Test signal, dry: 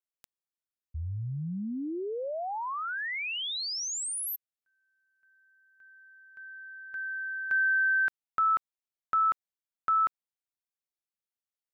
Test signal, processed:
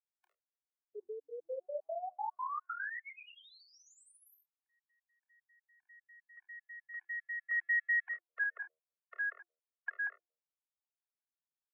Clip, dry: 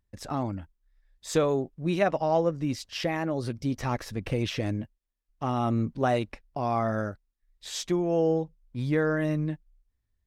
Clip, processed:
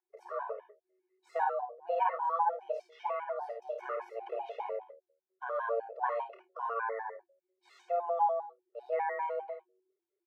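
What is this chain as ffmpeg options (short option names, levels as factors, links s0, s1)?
-filter_complex "[0:a]afreqshift=340,acrossover=split=440 2100:gain=0.2 1 0.0708[s0][s1][s2];[s0][s1][s2]amix=inputs=3:normalize=0,acrossover=split=2900[s3][s4];[s3]bandreject=f=78.8:t=h:w=4,bandreject=f=157.6:t=h:w=4,bandreject=f=236.4:t=h:w=4,bandreject=f=315.2:t=h:w=4,bandreject=f=394:t=h:w=4,bandreject=f=472.8:t=h:w=4,bandreject=f=551.6:t=h:w=4,bandreject=f=630.4:t=h:w=4,bandreject=f=709.2:t=h:w=4[s5];[s4]acompressor=threshold=0.00126:ratio=6:attack=2.2:release=444:detection=peak[s6];[s5][s6]amix=inputs=2:normalize=0,asplit=2[s7][s8];[s8]adelay=29,volume=0.355[s9];[s7][s9]amix=inputs=2:normalize=0,asplit=2[s10][s11];[s11]aecho=0:1:53|72:0.501|0.282[s12];[s10][s12]amix=inputs=2:normalize=0,afftfilt=real='re*gt(sin(2*PI*5*pts/sr)*(1-2*mod(floor(b*sr/1024/360),2)),0)':imag='im*gt(sin(2*PI*5*pts/sr)*(1-2*mod(floor(b*sr/1024/360),2)),0)':win_size=1024:overlap=0.75,volume=0.631"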